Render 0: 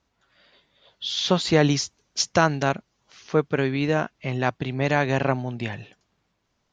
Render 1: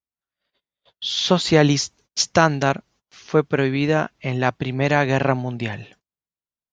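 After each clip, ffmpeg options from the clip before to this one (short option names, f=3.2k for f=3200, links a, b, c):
-af "agate=range=-32dB:threshold=-54dB:ratio=16:detection=peak,volume=3.5dB"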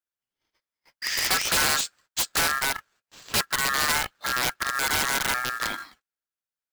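-af "aeval=exprs='val(0)*sin(2*PI*1500*n/s)':c=same,aeval=exprs='(mod(6.31*val(0)+1,2)-1)/6.31':c=same,acrusher=bits=2:mode=log:mix=0:aa=0.000001"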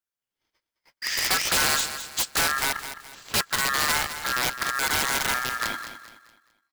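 -af "aecho=1:1:211|422|633|844:0.282|0.101|0.0365|0.0131"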